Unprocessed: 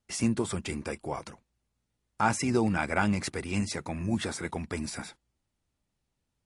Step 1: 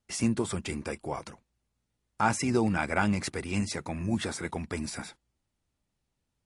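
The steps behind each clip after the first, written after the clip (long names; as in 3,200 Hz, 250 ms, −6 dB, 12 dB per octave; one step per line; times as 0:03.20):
no processing that can be heard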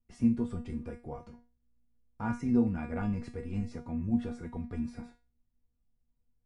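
spectral tilt −4.5 dB per octave
tuned comb filter 240 Hz, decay 0.31 s, harmonics all, mix 90%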